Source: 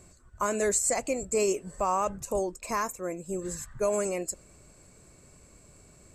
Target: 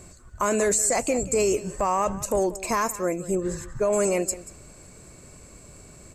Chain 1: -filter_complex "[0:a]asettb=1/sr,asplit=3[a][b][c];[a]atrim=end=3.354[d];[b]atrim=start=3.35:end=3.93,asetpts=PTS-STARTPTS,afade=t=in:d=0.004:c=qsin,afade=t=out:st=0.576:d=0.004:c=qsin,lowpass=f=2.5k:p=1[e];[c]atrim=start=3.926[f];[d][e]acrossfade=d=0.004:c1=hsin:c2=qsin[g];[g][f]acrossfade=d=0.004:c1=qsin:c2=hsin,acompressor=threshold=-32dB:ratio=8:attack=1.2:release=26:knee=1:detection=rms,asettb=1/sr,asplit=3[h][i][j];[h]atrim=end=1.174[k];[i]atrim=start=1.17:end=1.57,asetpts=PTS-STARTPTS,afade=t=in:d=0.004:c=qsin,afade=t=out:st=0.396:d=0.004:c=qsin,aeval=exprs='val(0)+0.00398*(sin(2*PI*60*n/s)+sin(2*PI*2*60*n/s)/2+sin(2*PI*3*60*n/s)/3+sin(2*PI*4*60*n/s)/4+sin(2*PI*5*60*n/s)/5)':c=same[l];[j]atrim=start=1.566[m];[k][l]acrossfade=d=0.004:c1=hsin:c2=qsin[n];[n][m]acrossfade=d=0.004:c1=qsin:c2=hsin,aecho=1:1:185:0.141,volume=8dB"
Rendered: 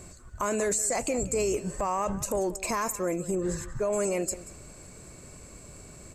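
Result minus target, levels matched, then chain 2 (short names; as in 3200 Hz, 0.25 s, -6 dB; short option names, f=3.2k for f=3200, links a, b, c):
compressor: peak gain reduction +5 dB
-filter_complex "[0:a]asettb=1/sr,asplit=3[a][b][c];[a]atrim=end=3.354[d];[b]atrim=start=3.35:end=3.93,asetpts=PTS-STARTPTS,afade=t=in:d=0.004:c=qsin,afade=t=out:st=0.576:d=0.004:c=qsin,lowpass=f=2.5k:p=1[e];[c]atrim=start=3.926[f];[d][e]acrossfade=d=0.004:c1=hsin:c2=qsin[g];[g][f]acrossfade=d=0.004:c1=qsin:c2=hsin,acompressor=threshold=-26dB:ratio=8:attack=1.2:release=26:knee=1:detection=rms,asettb=1/sr,asplit=3[h][i][j];[h]atrim=end=1.174[k];[i]atrim=start=1.17:end=1.57,asetpts=PTS-STARTPTS,afade=t=in:d=0.004:c=qsin,afade=t=out:st=0.396:d=0.004:c=qsin,aeval=exprs='val(0)+0.00398*(sin(2*PI*60*n/s)+sin(2*PI*2*60*n/s)/2+sin(2*PI*3*60*n/s)/3+sin(2*PI*4*60*n/s)/4+sin(2*PI*5*60*n/s)/5)':c=same[l];[j]atrim=start=1.566[m];[k][l]acrossfade=d=0.004:c1=hsin:c2=qsin[n];[n][m]acrossfade=d=0.004:c1=qsin:c2=hsin,aecho=1:1:185:0.141,volume=8dB"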